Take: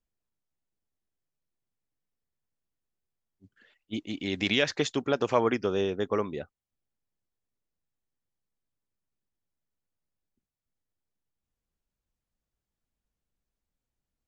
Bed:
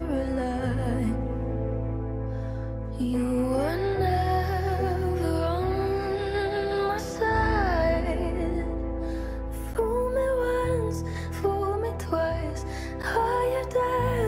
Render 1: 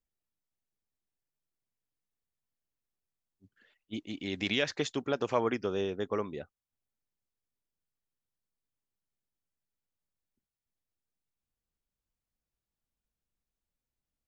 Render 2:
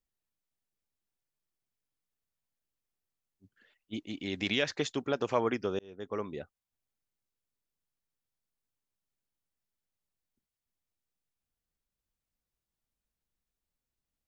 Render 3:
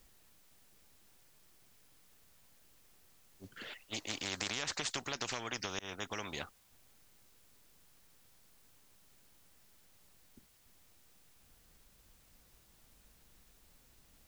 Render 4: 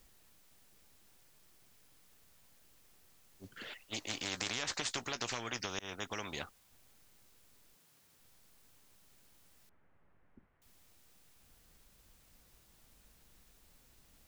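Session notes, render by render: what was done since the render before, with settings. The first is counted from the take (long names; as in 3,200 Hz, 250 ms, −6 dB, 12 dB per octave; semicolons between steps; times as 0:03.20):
level −4.5 dB
0:05.79–0:06.33: fade in
downward compressor, threshold −33 dBFS, peak gain reduction 10.5 dB; every bin compressed towards the loudest bin 4 to 1
0:03.99–0:05.60: double-tracking delay 17 ms −12 dB; 0:07.74–0:08.19: high-pass filter 150 Hz → 45 Hz 24 dB per octave; 0:09.69–0:10.62: low-pass filter 1,900 Hz 24 dB per octave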